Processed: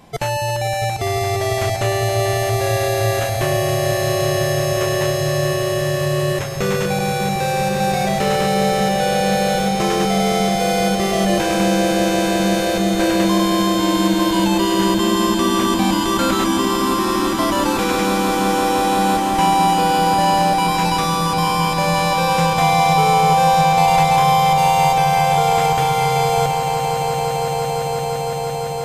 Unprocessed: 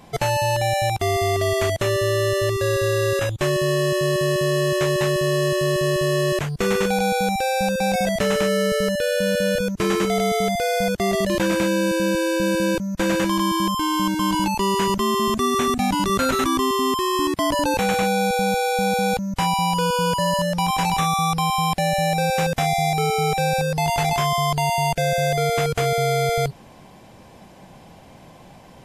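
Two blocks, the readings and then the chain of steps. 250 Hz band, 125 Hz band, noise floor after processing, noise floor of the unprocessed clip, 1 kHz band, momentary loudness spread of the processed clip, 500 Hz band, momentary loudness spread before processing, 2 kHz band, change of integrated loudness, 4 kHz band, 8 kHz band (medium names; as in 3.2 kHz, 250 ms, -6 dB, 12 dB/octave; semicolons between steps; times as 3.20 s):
+4.5 dB, +3.5 dB, -22 dBFS, -46 dBFS, +6.5 dB, 6 LU, +2.0 dB, 1 LU, +2.5 dB, +3.5 dB, +3.5 dB, +4.0 dB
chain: echo with a slow build-up 170 ms, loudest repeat 8, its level -10 dB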